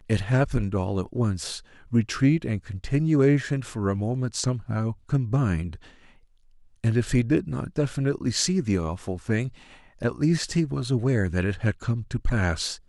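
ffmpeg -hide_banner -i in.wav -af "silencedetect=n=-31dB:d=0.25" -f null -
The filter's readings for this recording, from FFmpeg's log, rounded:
silence_start: 1.58
silence_end: 1.93 | silence_duration: 0.35
silence_start: 5.75
silence_end: 6.84 | silence_duration: 1.09
silence_start: 9.48
silence_end: 10.02 | silence_duration: 0.53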